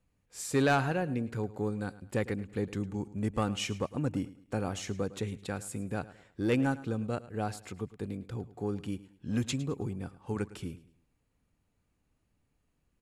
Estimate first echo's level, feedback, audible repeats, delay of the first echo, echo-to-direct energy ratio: -17.5 dB, 34%, 2, 107 ms, -17.0 dB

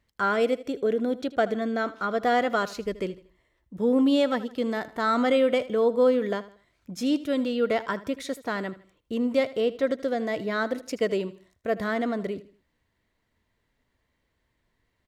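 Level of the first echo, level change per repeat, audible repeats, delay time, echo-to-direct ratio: -17.0 dB, -9.0 dB, 3, 79 ms, -16.5 dB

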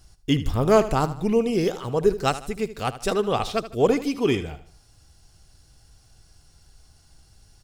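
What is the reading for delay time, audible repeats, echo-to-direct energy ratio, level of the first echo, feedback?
77 ms, 3, -13.0 dB, -14.0 dB, 40%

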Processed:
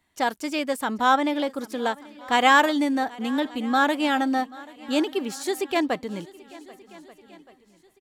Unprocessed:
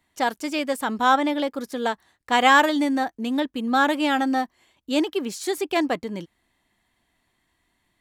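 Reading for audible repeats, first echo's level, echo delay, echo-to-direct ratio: 4, -21.5 dB, 785 ms, -18.5 dB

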